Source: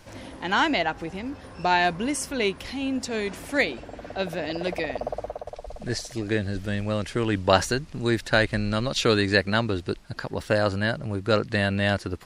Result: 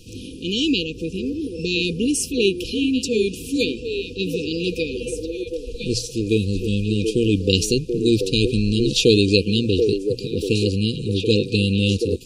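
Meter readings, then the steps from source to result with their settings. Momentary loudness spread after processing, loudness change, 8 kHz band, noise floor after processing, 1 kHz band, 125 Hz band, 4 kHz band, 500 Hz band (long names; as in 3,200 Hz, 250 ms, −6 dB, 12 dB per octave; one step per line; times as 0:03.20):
9 LU, +4.5 dB, +7.0 dB, −36 dBFS, below −40 dB, +6.5 dB, +7.5 dB, +5.0 dB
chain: mains-hum notches 60/120 Hz
echo through a band-pass that steps 733 ms, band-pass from 440 Hz, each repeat 1.4 octaves, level −3 dB
brick-wall band-stop 510–2,400 Hz
level +7 dB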